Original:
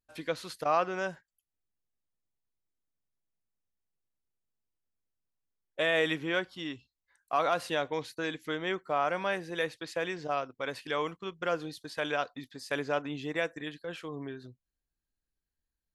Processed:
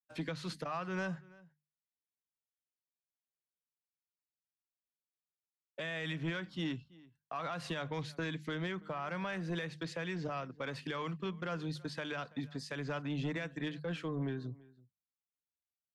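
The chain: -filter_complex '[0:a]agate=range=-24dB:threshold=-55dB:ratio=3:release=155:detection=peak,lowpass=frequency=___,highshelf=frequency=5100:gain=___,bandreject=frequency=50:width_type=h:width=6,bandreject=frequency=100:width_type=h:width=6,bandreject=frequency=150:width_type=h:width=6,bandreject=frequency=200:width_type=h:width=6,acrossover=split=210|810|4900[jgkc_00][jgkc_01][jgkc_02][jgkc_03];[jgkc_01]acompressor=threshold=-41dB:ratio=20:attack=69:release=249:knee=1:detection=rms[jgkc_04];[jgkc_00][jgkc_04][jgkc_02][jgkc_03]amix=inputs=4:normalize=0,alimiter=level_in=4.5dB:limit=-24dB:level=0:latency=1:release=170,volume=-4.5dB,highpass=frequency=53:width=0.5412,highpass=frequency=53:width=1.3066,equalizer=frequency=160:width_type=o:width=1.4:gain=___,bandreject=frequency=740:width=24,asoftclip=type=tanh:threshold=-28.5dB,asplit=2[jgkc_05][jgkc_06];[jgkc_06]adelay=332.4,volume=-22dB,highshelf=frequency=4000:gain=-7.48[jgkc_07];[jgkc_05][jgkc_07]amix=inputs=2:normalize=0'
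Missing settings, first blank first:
8300, -3, 11.5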